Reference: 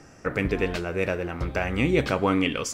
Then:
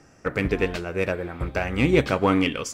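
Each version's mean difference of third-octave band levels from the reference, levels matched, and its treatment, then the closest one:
2.5 dB: healed spectral selection 0:01.14–0:01.43, 2,000–7,400 Hz after
in parallel at −4 dB: asymmetric clip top −19 dBFS
on the sum: expander for the loud parts 1.5 to 1, over −31 dBFS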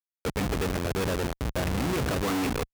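10.5 dB: elliptic low-pass filter 2,700 Hz
comparator with hysteresis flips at −28 dBFS
high-pass filter 47 Hz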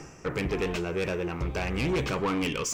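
4.0 dB: EQ curve with evenly spaced ripples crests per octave 0.74, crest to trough 6 dB
reversed playback
upward compression, threshold −27 dBFS
reversed playback
soft clipping −23.5 dBFS, distortion −8 dB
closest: first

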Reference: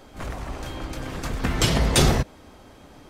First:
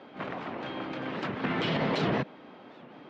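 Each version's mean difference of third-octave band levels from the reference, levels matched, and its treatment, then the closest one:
8.0 dB: high-pass filter 160 Hz 24 dB per octave
brickwall limiter −18 dBFS, peak gain reduction 11.5 dB
low-pass filter 3,400 Hz 24 dB per octave
wow of a warped record 78 rpm, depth 250 cents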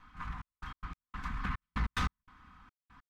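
14.0 dB: lower of the sound and its delayed copy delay 4 ms
drawn EQ curve 170 Hz 0 dB, 570 Hz −26 dB, 1,100 Hz +7 dB, 9,900 Hz −21 dB
gate pattern "xxxx..x.x.." 145 BPM −60 dB
soft clipping −18.5 dBFS, distortion −15 dB
level −6 dB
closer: first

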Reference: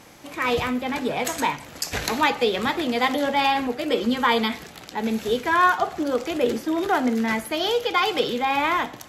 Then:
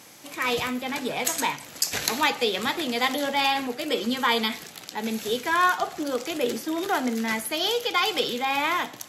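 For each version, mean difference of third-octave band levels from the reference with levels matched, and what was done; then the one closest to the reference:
3.5 dB: high-pass filter 110 Hz 12 dB per octave
high-shelf EQ 3,100 Hz +10.5 dB
level −4.5 dB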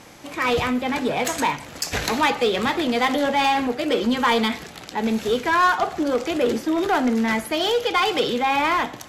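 1.5 dB: low-pass filter 12,000 Hz 12 dB per octave
in parallel at −8 dB: wave folding −20.5 dBFS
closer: second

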